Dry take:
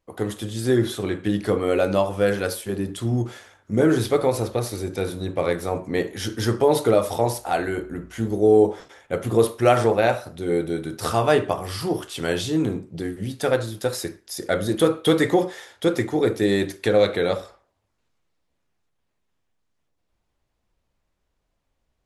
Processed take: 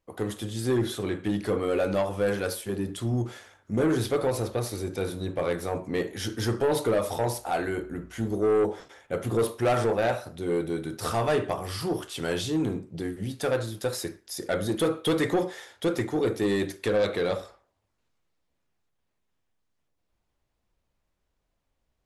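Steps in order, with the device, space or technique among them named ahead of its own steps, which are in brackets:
saturation between pre-emphasis and de-emphasis (high-shelf EQ 9,400 Hz +9 dB; soft clipping −15 dBFS, distortion −12 dB; high-shelf EQ 9,400 Hz −9 dB)
level −3 dB

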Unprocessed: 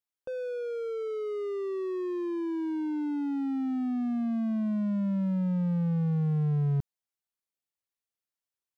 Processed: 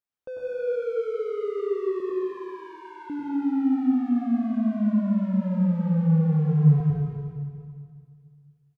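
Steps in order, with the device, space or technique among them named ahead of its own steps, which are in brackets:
0:02.00–0:03.10: elliptic high-pass filter 460 Hz, stop band 40 dB
repeating echo 226 ms, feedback 43%, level −12.5 dB
swimming-pool hall (convolution reverb RT60 2.1 s, pre-delay 90 ms, DRR −4.5 dB; high-shelf EQ 3,000 Hz −8 dB)

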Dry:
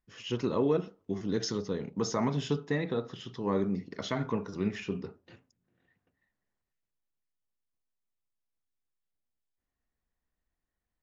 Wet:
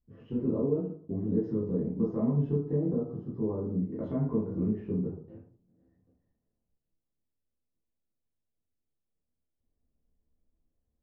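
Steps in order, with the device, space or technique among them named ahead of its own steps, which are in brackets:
television next door (downward compressor 4 to 1, threshold −33 dBFS, peak gain reduction 9.5 dB; low-pass filter 440 Hz 12 dB per octave; convolution reverb RT60 0.50 s, pre-delay 10 ms, DRR −8 dB)
0:02.76–0:03.82: flat-topped bell 2,500 Hz −12.5 dB 1.2 octaves

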